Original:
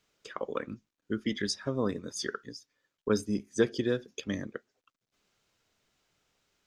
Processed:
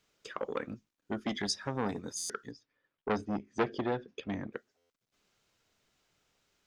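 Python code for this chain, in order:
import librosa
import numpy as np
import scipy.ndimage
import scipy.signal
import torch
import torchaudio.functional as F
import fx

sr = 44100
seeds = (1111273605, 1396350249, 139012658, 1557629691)

y = fx.lowpass(x, sr, hz=2700.0, slope=12, at=(2.51, 4.53))
y = fx.buffer_glitch(y, sr, at_s=(2.17, 4.77), block=512, repeats=10)
y = fx.transformer_sat(y, sr, knee_hz=1400.0)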